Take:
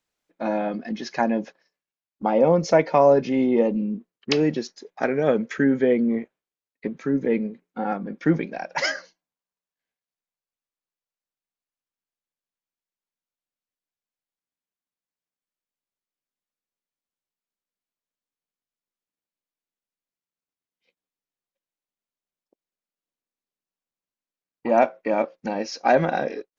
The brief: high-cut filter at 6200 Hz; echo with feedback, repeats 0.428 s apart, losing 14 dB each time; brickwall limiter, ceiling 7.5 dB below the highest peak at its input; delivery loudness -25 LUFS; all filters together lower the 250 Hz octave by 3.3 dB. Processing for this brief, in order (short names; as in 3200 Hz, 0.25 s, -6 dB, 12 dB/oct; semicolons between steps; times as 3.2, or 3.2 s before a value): LPF 6200 Hz; bell 250 Hz -4 dB; limiter -13.5 dBFS; feedback echo 0.428 s, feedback 20%, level -14 dB; gain +1.5 dB